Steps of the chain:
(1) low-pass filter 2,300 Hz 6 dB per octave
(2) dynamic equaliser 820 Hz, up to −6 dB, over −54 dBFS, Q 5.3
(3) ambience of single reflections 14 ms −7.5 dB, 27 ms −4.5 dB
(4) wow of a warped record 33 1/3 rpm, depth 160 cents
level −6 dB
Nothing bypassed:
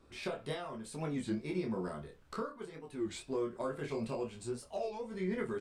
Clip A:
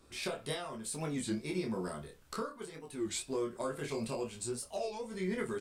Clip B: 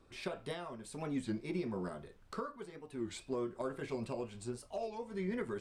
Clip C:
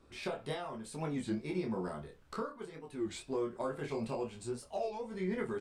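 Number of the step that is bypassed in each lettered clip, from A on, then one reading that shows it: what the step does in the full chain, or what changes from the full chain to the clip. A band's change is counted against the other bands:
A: 1, 8 kHz band +10.5 dB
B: 3, change in integrated loudness −2.0 LU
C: 2, 1 kHz band +1.5 dB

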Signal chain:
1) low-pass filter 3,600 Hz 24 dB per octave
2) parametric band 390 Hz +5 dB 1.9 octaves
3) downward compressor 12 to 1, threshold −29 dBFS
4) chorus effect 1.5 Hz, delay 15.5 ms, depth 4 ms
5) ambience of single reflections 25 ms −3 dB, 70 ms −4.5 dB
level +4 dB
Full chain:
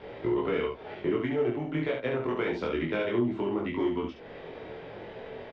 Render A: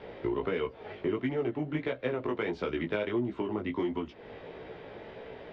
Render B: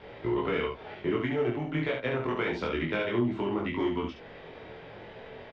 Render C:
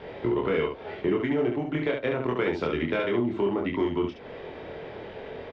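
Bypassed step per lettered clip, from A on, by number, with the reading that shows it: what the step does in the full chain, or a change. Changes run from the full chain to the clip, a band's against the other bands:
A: 5, echo-to-direct ratio −0.5 dB to none audible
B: 2, 500 Hz band −3.5 dB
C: 4, change in integrated loudness +2.5 LU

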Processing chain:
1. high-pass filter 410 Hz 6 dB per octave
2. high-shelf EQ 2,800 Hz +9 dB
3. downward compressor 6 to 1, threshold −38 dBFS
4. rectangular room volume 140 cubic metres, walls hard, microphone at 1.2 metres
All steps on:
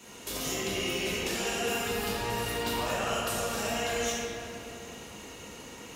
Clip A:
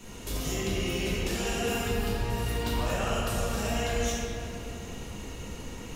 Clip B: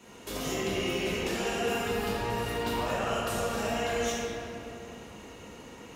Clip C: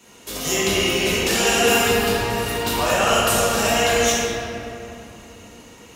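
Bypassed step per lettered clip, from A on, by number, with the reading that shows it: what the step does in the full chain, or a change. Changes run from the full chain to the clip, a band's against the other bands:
1, 125 Hz band +10.0 dB
2, 8 kHz band −6.5 dB
3, average gain reduction 7.5 dB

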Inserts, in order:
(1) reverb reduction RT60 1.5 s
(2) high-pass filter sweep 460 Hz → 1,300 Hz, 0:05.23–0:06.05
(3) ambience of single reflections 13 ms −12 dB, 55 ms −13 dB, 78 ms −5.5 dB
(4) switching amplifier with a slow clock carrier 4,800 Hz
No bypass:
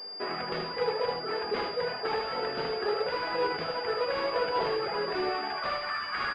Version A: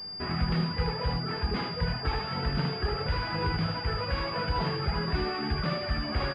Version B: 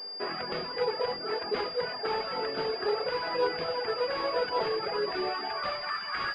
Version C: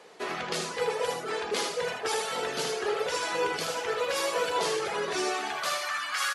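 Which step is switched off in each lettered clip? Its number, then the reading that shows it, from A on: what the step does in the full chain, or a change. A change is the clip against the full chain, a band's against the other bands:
2, 125 Hz band +20.5 dB
3, 4 kHz band +2.5 dB
4, 2 kHz band +2.0 dB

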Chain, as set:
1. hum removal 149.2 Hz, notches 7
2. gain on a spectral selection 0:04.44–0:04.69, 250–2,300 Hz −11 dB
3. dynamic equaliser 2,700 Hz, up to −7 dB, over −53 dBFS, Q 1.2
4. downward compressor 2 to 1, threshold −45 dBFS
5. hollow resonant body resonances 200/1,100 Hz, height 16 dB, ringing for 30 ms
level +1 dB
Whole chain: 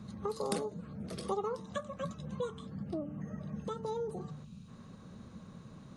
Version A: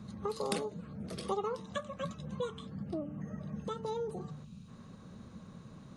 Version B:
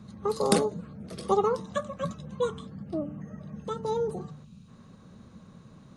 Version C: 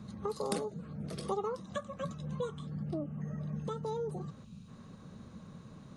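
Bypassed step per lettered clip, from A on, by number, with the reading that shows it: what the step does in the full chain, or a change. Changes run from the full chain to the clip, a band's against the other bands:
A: 3, 4 kHz band +3.0 dB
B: 4, average gain reduction 4.0 dB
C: 1, 125 Hz band +3.5 dB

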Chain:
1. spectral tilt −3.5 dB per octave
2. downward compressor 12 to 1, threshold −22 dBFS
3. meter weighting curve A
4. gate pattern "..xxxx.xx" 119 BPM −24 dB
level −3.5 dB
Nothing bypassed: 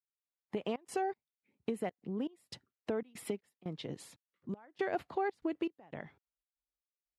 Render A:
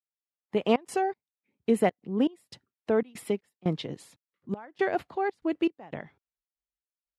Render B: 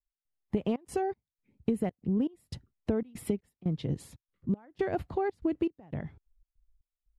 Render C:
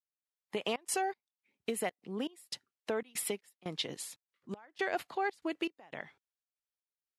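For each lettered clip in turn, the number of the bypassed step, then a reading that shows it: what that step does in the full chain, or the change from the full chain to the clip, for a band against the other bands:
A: 2, average gain reduction 7.5 dB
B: 3, 125 Hz band +11.5 dB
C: 1, 8 kHz band +12.5 dB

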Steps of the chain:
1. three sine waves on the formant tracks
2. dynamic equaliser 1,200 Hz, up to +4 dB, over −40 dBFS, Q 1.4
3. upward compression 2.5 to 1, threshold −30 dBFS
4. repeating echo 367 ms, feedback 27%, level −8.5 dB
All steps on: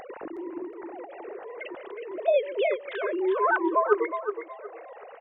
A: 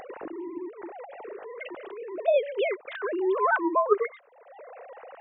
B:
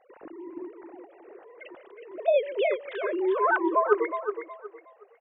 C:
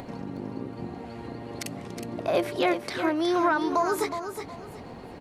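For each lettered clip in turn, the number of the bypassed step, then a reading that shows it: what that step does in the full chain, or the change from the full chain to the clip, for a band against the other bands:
4, change in momentary loudness spread +3 LU
3, change in integrated loudness +1.5 LU
1, 250 Hz band +7.0 dB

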